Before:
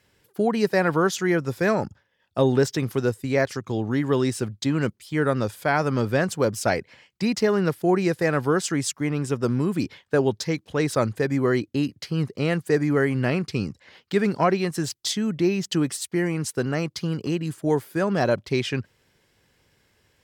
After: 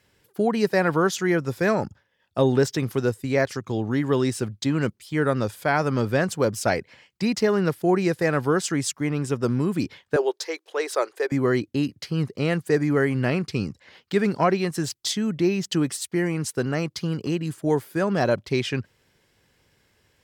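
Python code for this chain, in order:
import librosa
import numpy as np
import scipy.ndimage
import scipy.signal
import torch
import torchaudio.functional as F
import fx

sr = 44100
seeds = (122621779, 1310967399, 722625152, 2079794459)

y = fx.ellip_highpass(x, sr, hz=370.0, order=4, stop_db=50, at=(10.16, 11.32))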